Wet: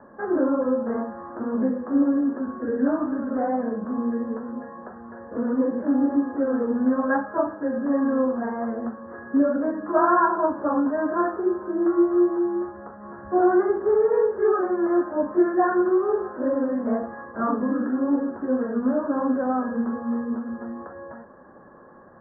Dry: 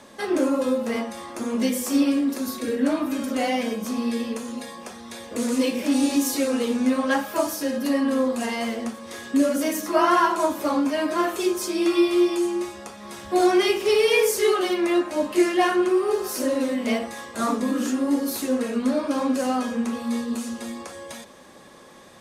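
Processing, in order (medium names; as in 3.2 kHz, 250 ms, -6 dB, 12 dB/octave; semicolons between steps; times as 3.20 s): steep low-pass 1.7 kHz 96 dB/octave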